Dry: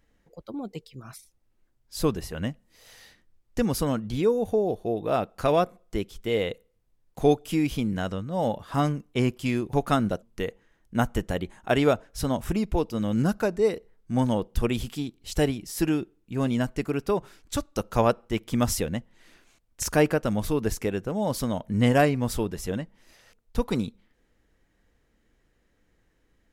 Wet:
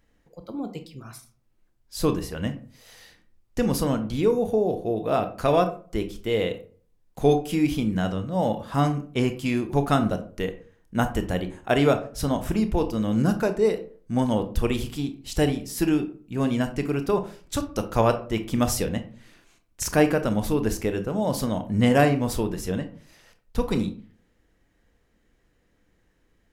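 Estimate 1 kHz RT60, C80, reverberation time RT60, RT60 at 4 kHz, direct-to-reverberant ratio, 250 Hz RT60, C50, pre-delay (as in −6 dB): 0.40 s, 17.5 dB, 0.45 s, 0.25 s, 8.0 dB, 0.50 s, 13.0 dB, 23 ms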